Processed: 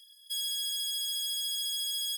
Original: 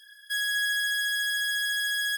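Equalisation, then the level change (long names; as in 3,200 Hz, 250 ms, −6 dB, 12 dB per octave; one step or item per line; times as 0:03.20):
Chebyshev high-pass filter 1,900 Hz, order 10
0.0 dB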